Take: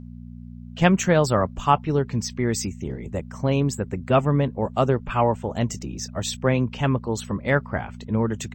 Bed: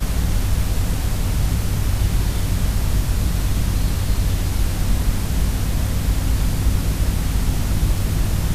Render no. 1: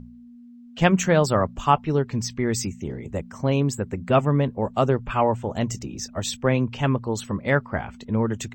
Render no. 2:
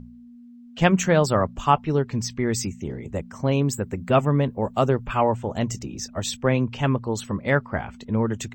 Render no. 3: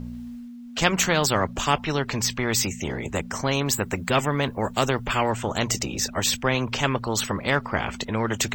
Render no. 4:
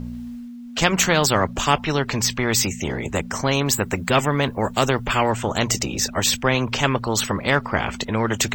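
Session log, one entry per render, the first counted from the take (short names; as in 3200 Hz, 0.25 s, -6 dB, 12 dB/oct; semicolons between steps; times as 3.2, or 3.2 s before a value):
de-hum 60 Hz, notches 3
3.66–5.32 high shelf 11000 Hz +10 dB
reverse; upward compressor, threshold -31 dBFS; reverse; spectral compressor 2:1
gain +3.5 dB; limiter -3 dBFS, peak gain reduction 2.5 dB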